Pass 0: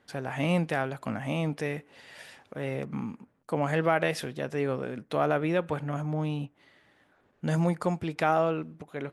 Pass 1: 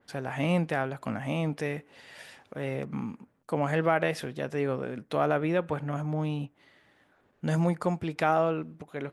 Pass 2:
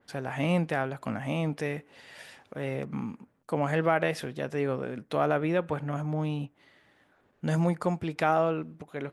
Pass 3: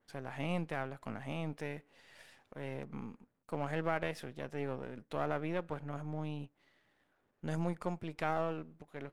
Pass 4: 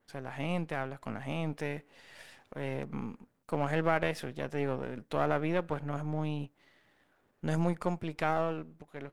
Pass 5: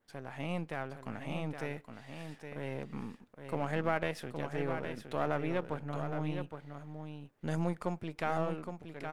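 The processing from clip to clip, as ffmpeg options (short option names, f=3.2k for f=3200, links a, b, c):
-af "adynamicequalizer=threshold=0.00794:dfrequency=2500:dqfactor=0.7:tfrequency=2500:tqfactor=0.7:attack=5:release=100:ratio=0.375:range=2.5:mode=cutabove:tftype=highshelf"
-af anull
-af "aeval=exprs='if(lt(val(0),0),0.447*val(0),val(0))':c=same,volume=-8dB"
-af "dynaudnorm=f=540:g=5:m=3.5dB,volume=2.5dB"
-af "aecho=1:1:816:0.422,volume=-3.5dB"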